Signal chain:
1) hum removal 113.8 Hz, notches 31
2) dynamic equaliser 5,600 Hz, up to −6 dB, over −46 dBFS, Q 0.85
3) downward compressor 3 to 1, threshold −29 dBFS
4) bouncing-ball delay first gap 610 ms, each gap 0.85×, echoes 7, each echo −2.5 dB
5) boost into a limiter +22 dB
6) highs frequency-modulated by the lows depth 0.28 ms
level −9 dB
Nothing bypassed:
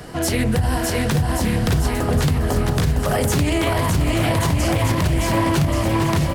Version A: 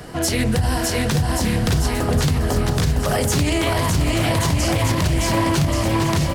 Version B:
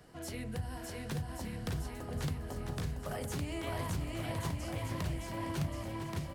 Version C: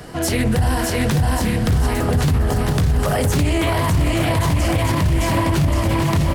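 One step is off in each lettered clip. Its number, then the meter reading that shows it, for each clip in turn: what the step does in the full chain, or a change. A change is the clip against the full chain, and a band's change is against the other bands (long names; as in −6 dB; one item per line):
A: 2, 8 kHz band +3.0 dB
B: 5, change in crest factor +5.5 dB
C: 3, average gain reduction 4.0 dB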